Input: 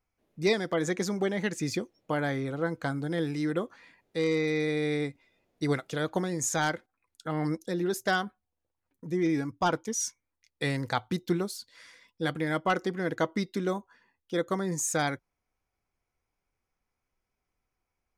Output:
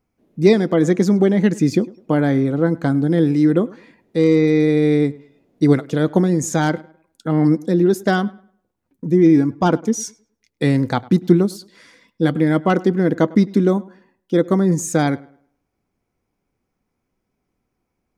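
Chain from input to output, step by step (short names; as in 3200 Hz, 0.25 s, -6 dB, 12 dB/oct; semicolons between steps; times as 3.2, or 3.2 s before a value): bell 230 Hz +14 dB 2.4 oct; on a send: tape echo 0.103 s, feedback 33%, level -20.5 dB, low-pass 2700 Hz; on the sum: gain +3.5 dB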